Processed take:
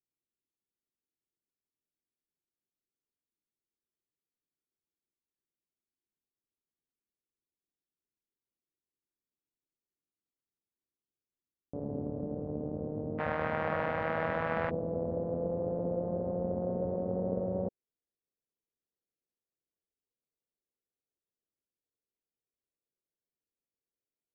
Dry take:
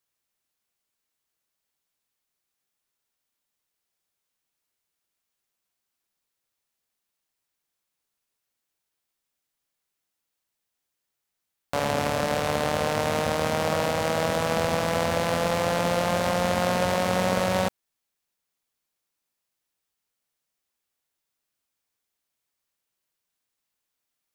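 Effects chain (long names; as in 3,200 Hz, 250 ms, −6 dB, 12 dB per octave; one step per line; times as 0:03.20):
transistor ladder low-pass 440 Hz, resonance 40%, from 0:13.18 2,200 Hz, from 0:14.69 540 Hz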